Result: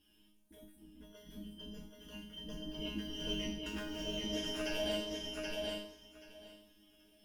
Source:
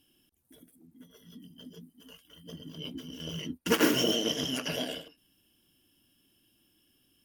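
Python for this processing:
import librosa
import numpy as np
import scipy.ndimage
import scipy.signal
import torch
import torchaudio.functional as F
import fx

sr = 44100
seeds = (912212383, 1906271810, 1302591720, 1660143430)

y = fx.octave_divider(x, sr, octaves=2, level_db=0.0)
y = fx.high_shelf(y, sr, hz=6700.0, db=-9.0)
y = fx.over_compress(y, sr, threshold_db=-36.0, ratio=-1.0)
y = fx.resonator_bank(y, sr, root=56, chord='fifth', decay_s=0.52)
y = fx.echo_feedback(y, sr, ms=779, feedback_pct=16, wet_db=-3.0)
y = y * 10.0 ** (15.5 / 20.0)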